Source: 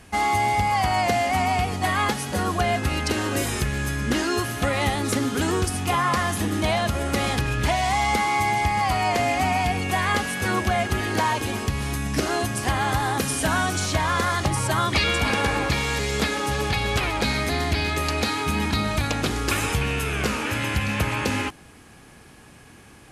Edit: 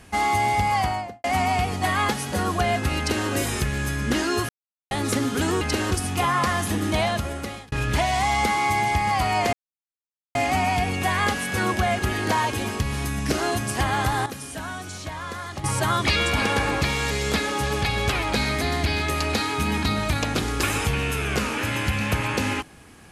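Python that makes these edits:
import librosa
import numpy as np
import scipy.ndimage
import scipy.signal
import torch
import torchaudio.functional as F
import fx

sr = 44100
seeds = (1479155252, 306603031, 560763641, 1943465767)

y = fx.studio_fade_out(x, sr, start_s=0.75, length_s=0.49)
y = fx.edit(y, sr, fx.duplicate(start_s=2.98, length_s=0.3, to_s=5.61),
    fx.silence(start_s=4.49, length_s=0.42),
    fx.fade_out_span(start_s=6.74, length_s=0.68),
    fx.insert_silence(at_s=9.23, length_s=0.82),
    fx.clip_gain(start_s=13.14, length_s=1.38, db=-10.5), tone=tone)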